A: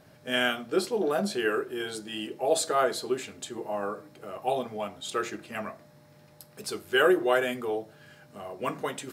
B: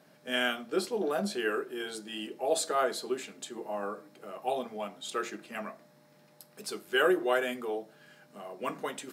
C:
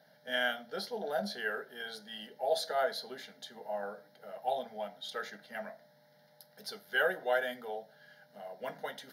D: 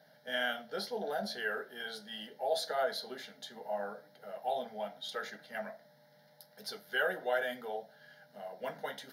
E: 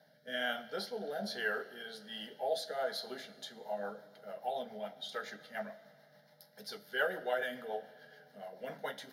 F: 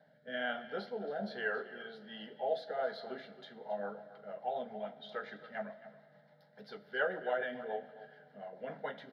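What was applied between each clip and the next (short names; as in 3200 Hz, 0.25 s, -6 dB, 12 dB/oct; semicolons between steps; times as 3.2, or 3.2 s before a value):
Chebyshev high-pass 180 Hz, order 3; gain -3 dB
low shelf 110 Hz -9.5 dB; fixed phaser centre 1700 Hz, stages 8
in parallel at -2.5 dB: limiter -29 dBFS, peak gain reduction 11 dB; on the sum: flange 0.73 Hz, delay 6.2 ms, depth 8.8 ms, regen -58%
rotary speaker horn 1.2 Hz, later 7 Hz, at 3.02; Schroeder reverb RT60 2.6 s, combs from 27 ms, DRR 16.5 dB; gain +1 dB
air absorption 370 m; echo 0.273 s -15 dB; gain +1.5 dB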